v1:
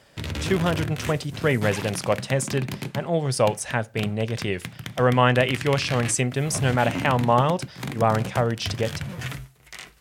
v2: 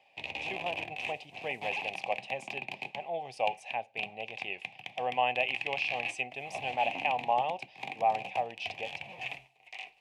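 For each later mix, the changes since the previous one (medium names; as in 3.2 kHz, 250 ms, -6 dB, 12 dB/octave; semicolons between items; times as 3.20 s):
background +5.5 dB; master: add two resonant band-passes 1.4 kHz, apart 1.7 oct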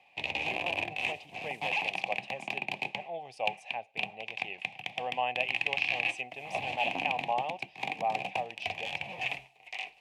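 background +8.5 dB; reverb: off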